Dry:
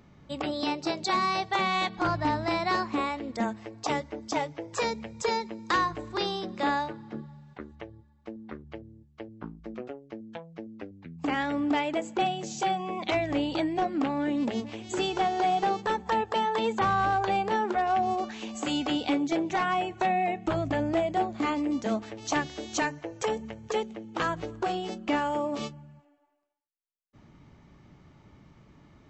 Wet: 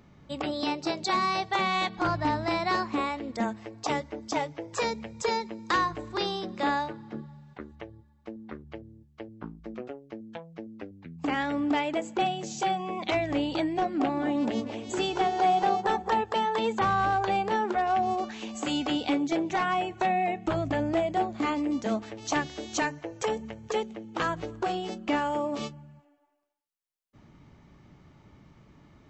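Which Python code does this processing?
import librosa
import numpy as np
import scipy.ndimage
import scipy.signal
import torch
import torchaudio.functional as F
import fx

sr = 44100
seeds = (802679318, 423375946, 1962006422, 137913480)

y = fx.echo_wet_bandpass(x, sr, ms=219, feedback_pct=34, hz=560.0, wet_db=-5.0, at=(13.99, 16.19), fade=0.02)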